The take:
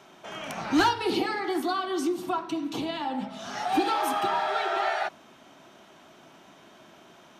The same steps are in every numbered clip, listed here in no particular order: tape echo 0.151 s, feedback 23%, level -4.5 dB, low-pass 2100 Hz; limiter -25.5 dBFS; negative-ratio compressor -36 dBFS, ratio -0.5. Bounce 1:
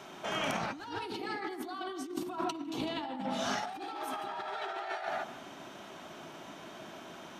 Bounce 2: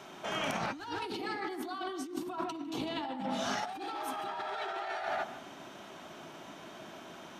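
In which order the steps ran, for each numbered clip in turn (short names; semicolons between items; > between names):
limiter > tape echo > negative-ratio compressor; tape echo > limiter > negative-ratio compressor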